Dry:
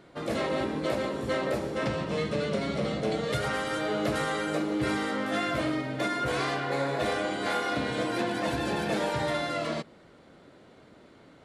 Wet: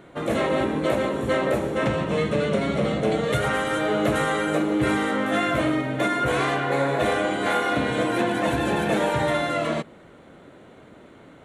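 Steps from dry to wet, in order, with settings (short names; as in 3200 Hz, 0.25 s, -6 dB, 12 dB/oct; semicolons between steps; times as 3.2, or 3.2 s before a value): bell 4900 Hz -15 dB 0.4 oct; gain +6.5 dB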